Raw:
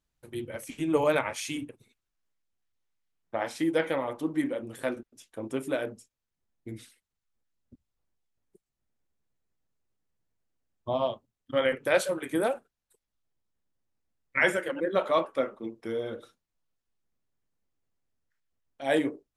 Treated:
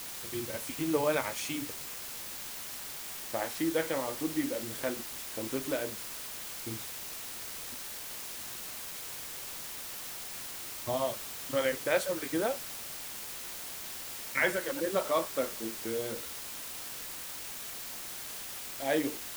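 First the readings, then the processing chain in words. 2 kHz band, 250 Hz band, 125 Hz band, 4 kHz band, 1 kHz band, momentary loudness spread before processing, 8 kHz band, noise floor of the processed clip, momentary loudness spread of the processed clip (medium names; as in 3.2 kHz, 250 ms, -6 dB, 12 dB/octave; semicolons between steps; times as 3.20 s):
-3.0 dB, -3.5 dB, -2.5 dB, +3.0 dB, -3.5 dB, 16 LU, +9.5 dB, -42 dBFS, 9 LU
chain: in parallel at 0 dB: compression, threshold -38 dBFS, peak gain reduction 18.5 dB; on the sum: word length cut 6-bit, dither triangular; trim -5.5 dB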